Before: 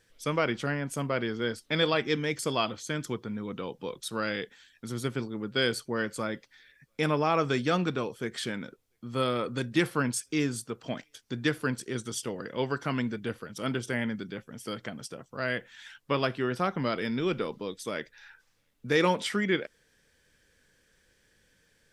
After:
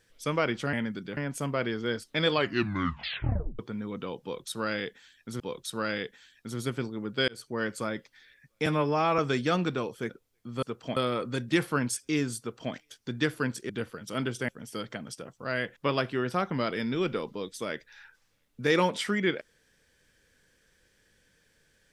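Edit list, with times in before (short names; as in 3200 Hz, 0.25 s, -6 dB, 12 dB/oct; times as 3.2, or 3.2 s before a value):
1.87 tape stop 1.28 s
3.78–4.96 loop, 2 plays
5.66–6.09 fade in equal-power
7.04–7.39 stretch 1.5×
8.3–8.67 cut
10.63–10.97 copy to 9.2
11.93–13.18 cut
13.97–14.41 move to 0.73
15.69–16.02 cut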